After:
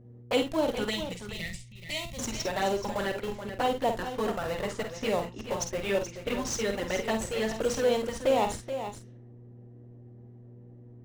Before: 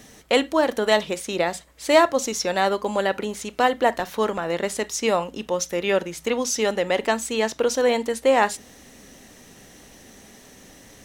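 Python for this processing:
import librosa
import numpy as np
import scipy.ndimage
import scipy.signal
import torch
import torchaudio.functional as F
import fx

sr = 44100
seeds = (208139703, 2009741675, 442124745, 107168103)

p1 = fx.env_lowpass(x, sr, base_hz=440.0, full_db=-19.5)
p2 = fx.env_flanger(p1, sr, rest_ms=11.3, full_db=-16.0)
p3 = fx.schmitt(p2, sr, flips_db=-27.5)
p4 = p2 + (p3 * librosa.db_to_amplitude(-5.5))
p5 = fx.dmg_buzz(p4, sr, base_hz=120.0, harmonics=4, level_db=-46.0, tilt_db=-8, odd_only=False)
p6 = fx.spec_box(p5, sr, start_s=0.9, length_s=1.29, low_hz=230.0, high_hz=1800.0, gain_db=-18)
p7 = p6 + fx.echo_multitap(p6, sr, ms=(50, 68, 428, 467), db=(-7.5, -17.5, -10.0, -17.5), dry=0)
y = p7 * librosa.db_to_amplitude(-7.0)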